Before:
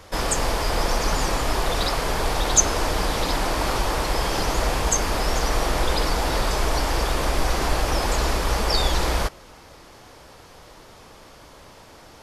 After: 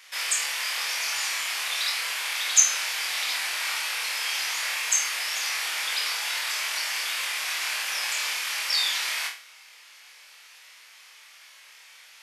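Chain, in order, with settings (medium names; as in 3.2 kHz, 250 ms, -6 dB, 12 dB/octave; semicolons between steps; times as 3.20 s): resonant high-pass 2.3 kHz, resonance Q 2.2; peaking EQ 3.1 kHz -4 dB 2.4 oct; on a send: flutter echo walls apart 4.4 m, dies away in 0.38 s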